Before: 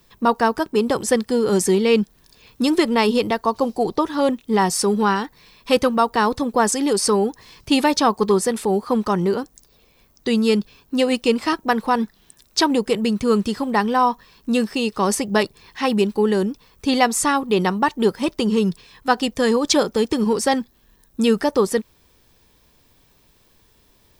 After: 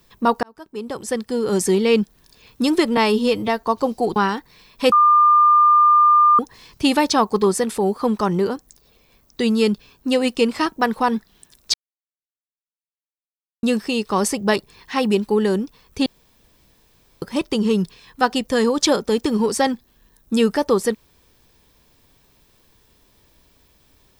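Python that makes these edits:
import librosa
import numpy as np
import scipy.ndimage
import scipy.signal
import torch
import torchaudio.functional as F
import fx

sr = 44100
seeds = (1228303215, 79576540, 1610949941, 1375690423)

y = fx.edit(x, sr, fx.fade_in_span(start_s=0.43, length_s=1.34),
    fx.stretch_span(start_s=2.97, length_s=0.44, factor=1.5),
    fx.cut(start_s=3.94, length_s=1.09),
    fx.bleep(start_s=5.79, length_s=1.47, hz=1200.0, db=-9.5),
    fx.silence(start_s=12.61, length_s=1.89),
    fx.room_tone_fill(start_s=16.93, length_s=1.16), tone=tone)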